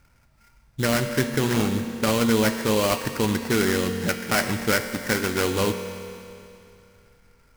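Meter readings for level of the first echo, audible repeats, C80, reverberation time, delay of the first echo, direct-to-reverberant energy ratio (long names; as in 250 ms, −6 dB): no echo audible, no echo audible, 8.5 dB, 2.7 s, no echo audible, 6.5 dB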